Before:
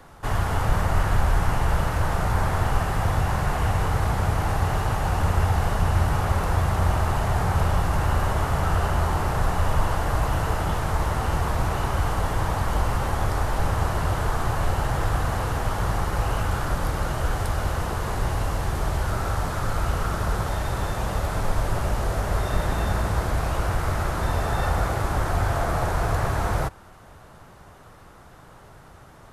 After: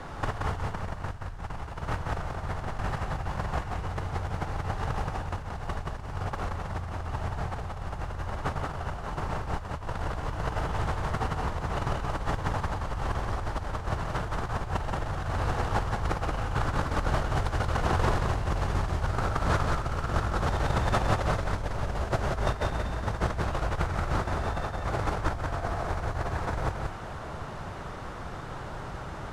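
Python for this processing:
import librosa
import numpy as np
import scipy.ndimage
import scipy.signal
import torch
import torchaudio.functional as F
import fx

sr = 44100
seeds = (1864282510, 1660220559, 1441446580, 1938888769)

p1 = fx.over_compress(x, sr, threshold_db=-29.0, ratio=-0.5)
p2 = fx.mod_noise(p1, sr, seeds[0], snr_db=20)
p3 = fx.air_absorb(p2, sr, metres=78.0)
y = p3 + fx.echo_single(p3, sr, ms=177, db=-3.5, dry=0)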